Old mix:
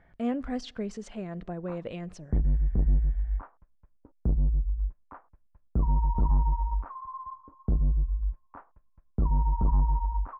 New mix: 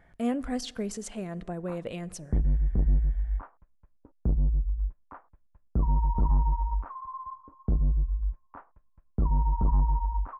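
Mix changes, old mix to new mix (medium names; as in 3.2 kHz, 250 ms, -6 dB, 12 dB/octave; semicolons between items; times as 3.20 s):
speech: send +7.5 dB; master: remove distance through air 130 m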